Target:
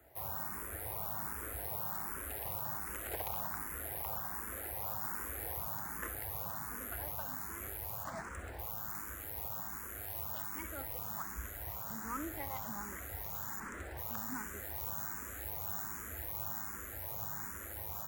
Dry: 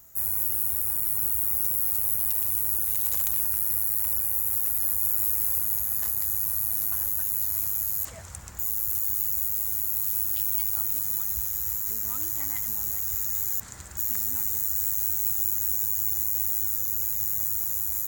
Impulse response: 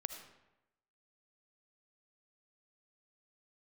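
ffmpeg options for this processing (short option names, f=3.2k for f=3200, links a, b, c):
-filter_complex "[0:a]acrossover=split=250 2000:gain=0.158 1 0.0708[a][b][c];[a][b][c]amix=inputs=3:normalize=0,acrossover=split=200[d][e];[d]acontrast=29[f];[e]acrusher=bits=3:mode=log:mix=0:aa=0.000001[g];[f][g]amix=inputs=2:normalize=0[h];[1:a]atrim=start_sample=2205,atrim=end_sample=3969,asetrate=52920,aresample=44100[i];[h][i]afir=irnorm=-1:irlink=0,asplit=2[j][k];[k]afreqshift=1.3[l];[j][l]amix=inputs=2:normalize=1,volume=12.5dB"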